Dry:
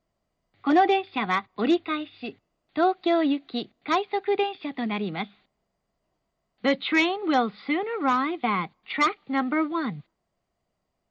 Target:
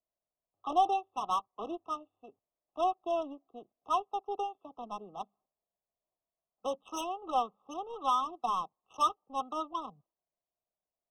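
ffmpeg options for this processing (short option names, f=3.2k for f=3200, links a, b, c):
-filter_complex "[0:a]acrossover=split=600 2700:gain=0.0708 1 0.0631[a][b][c];[a][b][c]amix=inputs=3:normalize=0,adynamicsmooth=sensitivity=2.5:basefreq=520,afftfilt=real='re*eq(mod(floor(b*sr/1024/1300),2),0)':imag='im*eq(mod(floor(b*sr/1024/1300),2),0)':win_size=1024:overlap=0.75,volume=-2.5dB"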